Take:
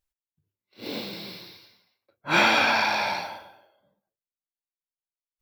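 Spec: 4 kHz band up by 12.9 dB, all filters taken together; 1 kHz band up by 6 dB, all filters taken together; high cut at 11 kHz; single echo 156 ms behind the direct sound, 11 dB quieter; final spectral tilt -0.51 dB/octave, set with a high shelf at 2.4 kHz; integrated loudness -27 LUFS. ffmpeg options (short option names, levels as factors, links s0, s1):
-af "lowpass=11000,equalizer=f=1000:t=o:g=5.5,highshelf=f=2400:g=8.5,equalizer=f=4000:t=o:g=8,aecho=1:1:156:0.282,volume=0.251"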